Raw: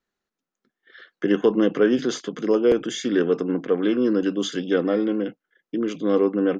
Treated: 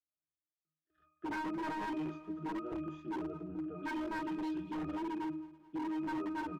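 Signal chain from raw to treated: 3.74–5.82 bell 4100 Hz +14.5 dB 1.2 oct; sample leveller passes 2; octave resonator D#, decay 0.71 s; flange 1.1 Hz, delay 2.5 ms, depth 8.1 ms, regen -42%; wavefolder -37 dBFS; feedback echo 0.217 s, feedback 56%, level -20.5 dB; gain +4 dB

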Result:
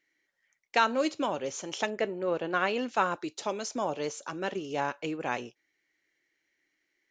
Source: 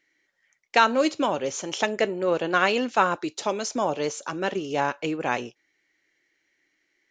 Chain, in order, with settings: 1.9–2.79 LPF 3000 Hz 6 dB/oct; gain -6 dB

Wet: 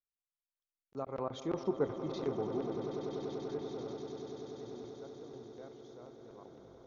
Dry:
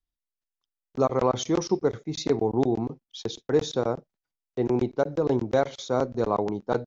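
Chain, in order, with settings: tape stop at the end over 0.50 s; Doppler pass-by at 1.82, 9 m/s, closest 2.9 m; vibrato 3 Hz 14 cents; swelling echo 97 ms, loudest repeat 8, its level -13 dB; treble ducked by the level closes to 2600 Hz, closed at -25 dBFS; gain -8.5 dB

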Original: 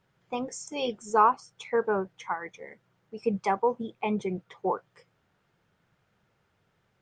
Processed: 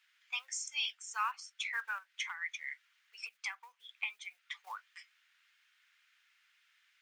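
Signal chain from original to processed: short-mantissa float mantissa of 6-bit; high shelf 2900 Hz -10.5 dB; 1.98–4.67 compressor 6:1, threshold -35 dBFS, peak gain reduction 14 dB; inverse Chebyshev high-pass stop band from 340 Hz, stop band 80 dB; vocal rider within 3 dB 0.5 s; gain +11.5 dB

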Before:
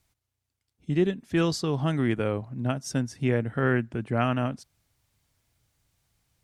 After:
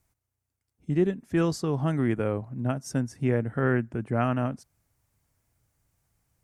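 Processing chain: bell 3600 Hz -10 dB 1.2 oct

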